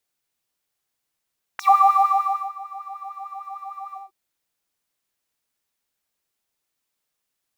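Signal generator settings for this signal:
subtractive patch with filter wobble G5, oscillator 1 triangle, oscillator 2 sine, interval +7 semitones, oscillator 2 level −1 dB, sub −18 dB, noise −22.5 dB, filter highpass, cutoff 360 Hz, Q 6, filter envelope 4 octaves, filter decay 0.10 s, attack 4 ms, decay 0.93 s, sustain −22.5 dB, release 0.15 s, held 2.37 s, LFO 6.6 Hz, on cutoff 0.5 octaves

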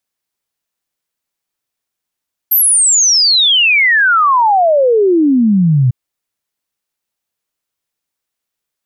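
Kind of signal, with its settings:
exponential sine sweep 13,000 Hz → 120 Hz 3.40 s −7 dBFS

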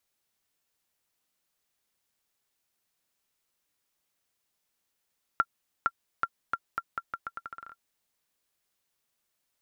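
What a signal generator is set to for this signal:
bouncing ball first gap 0.46 s, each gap 0.81, 1,370 Hz, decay 51 ms −11.5 dBFS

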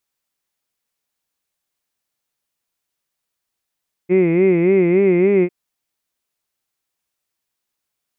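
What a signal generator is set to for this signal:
vowel from formants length 1.40 s, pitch 175 Hz, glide +1.5 semitones, vibrato 3.5 Hz, vibrato depth 1.3 semitones, F1 380 Hz, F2 2,100 Hz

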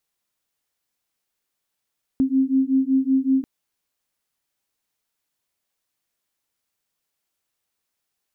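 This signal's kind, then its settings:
two tones that beat 263 Hz, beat 5.3 Hz, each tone −19.5 dBFS 1.24 s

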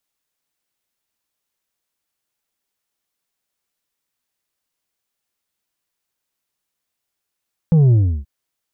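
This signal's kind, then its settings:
bass drop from 170 Hz, over 0.53 s, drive 5 dB, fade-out 0.33 s, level −9.5 dB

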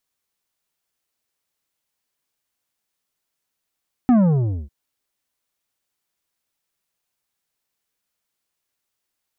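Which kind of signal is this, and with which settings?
bass drop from 260 Hz, over 0.60 s, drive 9 dB, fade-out 0.59 s, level −11.5 dB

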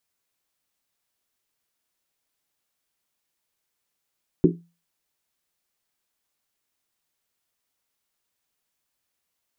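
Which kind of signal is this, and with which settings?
drum after Risset, pitch 170 Hz, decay 0.32 s, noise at 330 Hz, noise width 140 Hz, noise 60%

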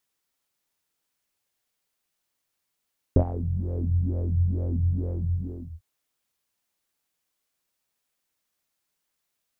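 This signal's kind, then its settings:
subtractive patch with filter wobble F2, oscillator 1 triangle, oscillator 2 saw, filter lowpass, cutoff 150 Hz, Q 5.8, filter envelope 1.5 octaves, filter decay 0.45 s, filter sustain 45%, attack 2.2 ms, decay 0.08 s, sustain −16 dB, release 0.55 s, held 2.10 s, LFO 2.2 Hz, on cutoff 1.1 octaves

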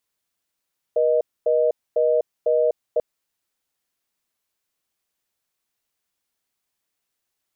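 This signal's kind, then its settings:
call progress tone reorder tone, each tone −18.5 dBFS 2.04 s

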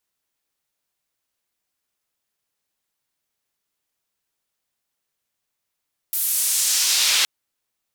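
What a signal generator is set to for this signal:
filter sweep on noise white, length 1.12 s bandpass, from 14,000 Hz, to 3,200 Hz, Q 1.1, exponential, gain ramp +8 dB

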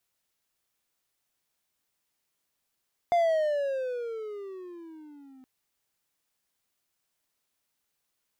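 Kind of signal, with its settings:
pitch glide with a swell triangle, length 2.32 s, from 703 Hz, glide −17.5 semitones, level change −30 dB, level −17.5 dB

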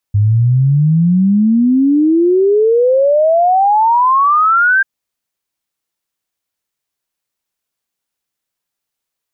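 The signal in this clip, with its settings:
exponential sine sweep 100 Hz → 1,600 Hz 4.69 s −7.5 dBFS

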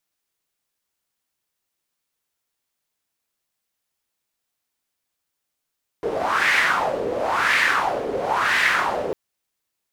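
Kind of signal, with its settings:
wind from filtered noise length 3.10 s, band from 450 Hz, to 2,000 Hz, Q 3.9, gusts 3, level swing 8 dB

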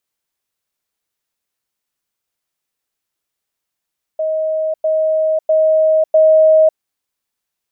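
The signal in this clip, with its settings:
level staircase 630 Hz −15 dBFS, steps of 3 dB, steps 4, 0.55 s 0.10 s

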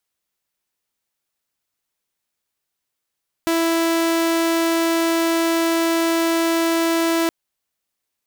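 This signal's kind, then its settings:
tone saw 331 Hz −14 dBFS 3.82 s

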